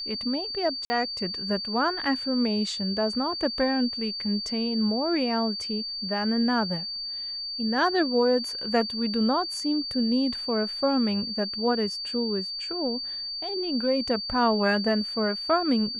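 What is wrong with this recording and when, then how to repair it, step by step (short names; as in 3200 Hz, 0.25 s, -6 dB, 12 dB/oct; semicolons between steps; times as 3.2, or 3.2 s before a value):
tone 4600 Hz -31 dBFS
0.85–0.9 gap 50 ms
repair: notch 4600 Hz, Q 30; interpolate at 0.85, 50 ms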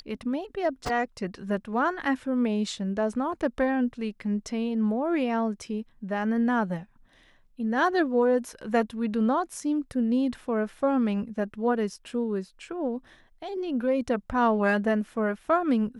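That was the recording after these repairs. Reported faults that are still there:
none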